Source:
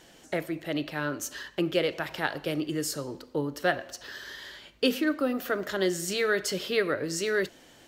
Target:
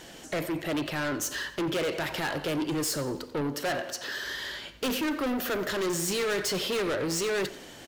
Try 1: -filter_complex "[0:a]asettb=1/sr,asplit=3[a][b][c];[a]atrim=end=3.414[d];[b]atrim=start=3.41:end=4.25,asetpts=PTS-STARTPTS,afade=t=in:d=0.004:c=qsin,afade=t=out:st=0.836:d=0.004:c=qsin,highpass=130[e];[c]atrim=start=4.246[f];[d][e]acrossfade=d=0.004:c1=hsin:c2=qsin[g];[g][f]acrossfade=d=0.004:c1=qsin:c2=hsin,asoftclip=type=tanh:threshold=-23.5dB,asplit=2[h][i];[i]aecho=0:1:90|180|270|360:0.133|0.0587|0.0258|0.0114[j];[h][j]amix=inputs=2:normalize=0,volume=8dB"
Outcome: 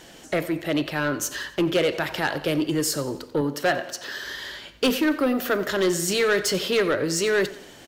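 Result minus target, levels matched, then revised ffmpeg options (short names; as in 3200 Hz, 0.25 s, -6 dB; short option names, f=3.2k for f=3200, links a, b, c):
soft clip: distortion -8 dB
-filter_complex "[0:a]asettb=1/sr,asplit=3[a][b][c];[a]atrim=end=3.414[d];[b]atrim=start=3.41:end=4.25,asetpts=PTS-STARTPTS,afade=t=in:d=0.004:c=qsin,afade=t=out:st=0.836:d=0.004:c=qsin,highpass=130[e];[c]atrim=start=4.246[f];[d][e]acrossfade=d=0.004:c1=hsin:c2=qsin[g];[g][f]acrossfade=d=0.004:c1=qsin:c2=hsin,asoftclip=type=tanh:threshold=-34.5dB,asplit=2[h][i];[i]aecho=0:1:90|180|270|360:0.133|0.0587|0.0258|0.0114[j];[h][j]amix=inputs=2:normalize=0,volume=8dB"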